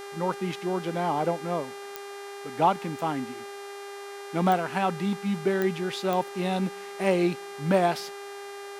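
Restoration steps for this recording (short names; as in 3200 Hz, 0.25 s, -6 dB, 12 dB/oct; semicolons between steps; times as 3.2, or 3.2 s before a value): de-click; de-hum 401 Hz, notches 31; noise print and reduce 30 dB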